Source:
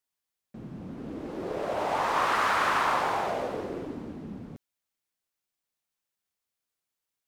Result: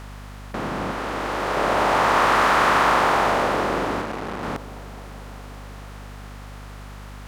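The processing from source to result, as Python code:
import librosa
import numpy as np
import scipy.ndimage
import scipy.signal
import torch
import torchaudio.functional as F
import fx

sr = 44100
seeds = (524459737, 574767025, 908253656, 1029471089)

y = fx.bin_compress(x, sr, power=0.4)
y = fx.low_shelf(y, sr, hz=340.0, db=-9.0, at=(0.91, 1.57))
y = fx.add_hum(y, sr, base_hz=50, snr_db=15)
y = fx.echo_wet_lowpass(y, sr, ms=211, feedback_pct=82, hz=880.0, wet_db=-19.5)
y = fx.transformer_sat(y, sr, knee_hz=710.0, at=(4.01, 4.43))
y = y * librosa.db_to_amplitude(4.0)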